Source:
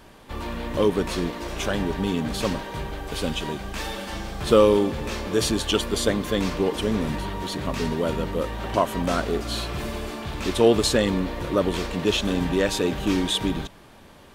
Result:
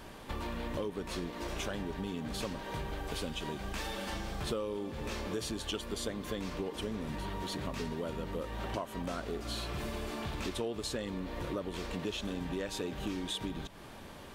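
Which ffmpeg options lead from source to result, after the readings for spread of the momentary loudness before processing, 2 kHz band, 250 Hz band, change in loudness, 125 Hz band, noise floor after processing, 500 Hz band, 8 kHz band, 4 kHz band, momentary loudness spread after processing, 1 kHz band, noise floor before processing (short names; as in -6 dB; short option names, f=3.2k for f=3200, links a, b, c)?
12 LU, -11.5 dB, -13.5 dB, -13.5 dB, -11.5 dB, -49 dBFS, -15.5 dB, -12.0 dB, -12.0 dB, 3 LU, -12.0 dB, -49 dBFS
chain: -af "acompressor=threshold=-35dB:ratio=6"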